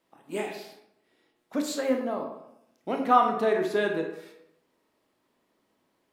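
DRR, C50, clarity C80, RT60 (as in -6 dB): 2.5 dB, 5.5 dB, 8.5 dB, 0.80 s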